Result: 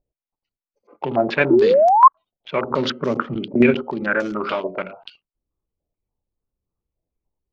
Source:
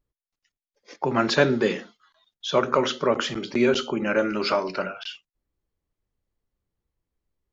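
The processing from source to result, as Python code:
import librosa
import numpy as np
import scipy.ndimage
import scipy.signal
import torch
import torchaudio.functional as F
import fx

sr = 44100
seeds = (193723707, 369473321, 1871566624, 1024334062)

p1 = fx.wiener(x, sr, points=25)
p2 = fx.graphic_eq_10(p1, sr, hz=(125, 250, 1000), db=(7, 6, -3), at=(2.7, 3.83))
p3 = fx.level_steps(p2, sr, step_db=15)
p4 = p2 + (p3 * 10.0 ** (1.0 / 20.0))
p5 = fx.spec_paint(p4, sr, seeds[0], shape='rise', start_s=1.5, length_s=0.58, low_hz=320.0, high_hz=1100.0, level_db=-10.0)
p6 = fx.filter_held_lowpass(p5, sr, hz=6.9, low_hz=660.0, high_hz=6000.0)
y = p6 * 10.0 ** (-4.0 / 20.0)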